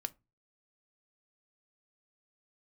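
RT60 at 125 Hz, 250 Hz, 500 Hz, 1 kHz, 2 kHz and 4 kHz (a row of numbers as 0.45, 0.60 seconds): 0.45, 0.35, 0.25, 0.25, 0.20, 0.15 seconds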